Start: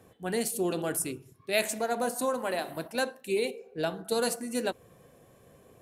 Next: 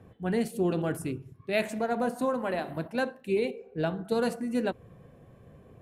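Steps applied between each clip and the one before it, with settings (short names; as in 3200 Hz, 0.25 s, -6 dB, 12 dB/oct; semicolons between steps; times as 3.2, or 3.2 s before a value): tone controls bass +9 dB, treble -14 dB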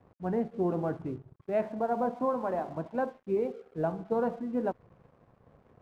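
synth low-pass 970 Hz, resonance Q 1.8; crossover distortion -55 dBFS; gain -3 dB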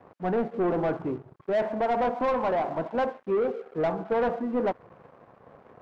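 overdrive pedal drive 21 dB, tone 1500 Hz, clips at -17 dBFS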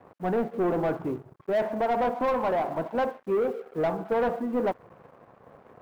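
block floating point 7-bit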